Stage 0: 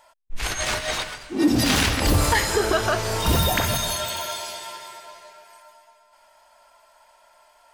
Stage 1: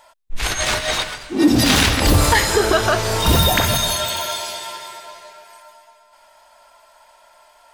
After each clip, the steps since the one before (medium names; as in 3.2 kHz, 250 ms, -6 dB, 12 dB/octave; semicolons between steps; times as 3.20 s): peaking EQ 3.7 kHz +3 dB 0.22 oct; trim +5 dB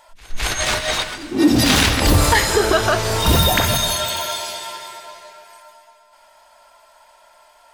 pre-echo 211 ms -22 dB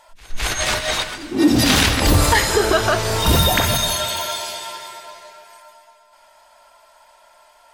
MP3 80 kbps 44.1 kHz